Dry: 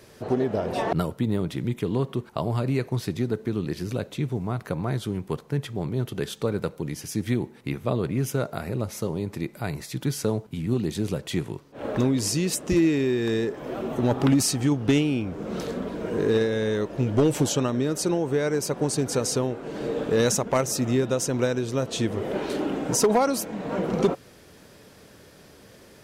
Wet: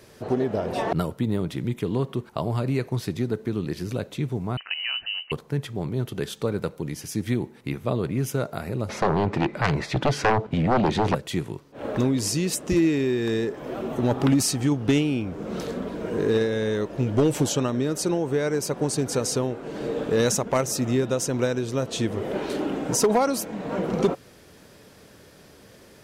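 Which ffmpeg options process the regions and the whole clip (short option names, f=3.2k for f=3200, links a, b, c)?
-filter_complex "[0:a]asettb=1/sr,asplit=3[a][b][c];[a]atrim=end=4.574[d];[b]atrim=start=4.57:end=5.32,asetpts=PTS-STARTPTS,afade=t=in:d=0.004:c=qsin,afade=t=out:st=0.746:d=0.004:c=qsin,lowshelf=f=180:g=-5,lowpass=f=2.6k:t=q:w=0.5098,lowpass=f=2.6k:t=q:w=0.6013,lowpass=f=2.6k:t=q:w=0.9,lowpass=f=2.6k:t=q:w=2.563,afreqshift=-3100[e];[c]atrim=start=5.316[f];[d][e]acrossfade=d=0.004:c1=hsin:c2=qsin[g];[g][f]acrossfade=d=0.004:c1=qsin:c2=hsin,asettb=1/sr,asplit=3[h][i][j];[h]atrim=end=8.894[k];[i]atrim=start=8.89:end=11.15,asetpts=PTS-STARTPTS,afade=t=in:d=0.004:c=qsin,afade=t=out:st=2.256:d=0.004:c=qsin,adynamicsmooth=sensitivity=0.5:basefreq=2.6k,aeval=exprs='0.251*sin(PI/2*3.98*val(0)/0.251)':c=same,lowshelf=f=370:g=-7.5[l];[j]atrim=start=11.146[m];[k][l]acrossfade=d=0.004:c1=hsin:c2=qsin[n];[n][m]acrossfade=d=0.004:c1=qsin:c2=hsin"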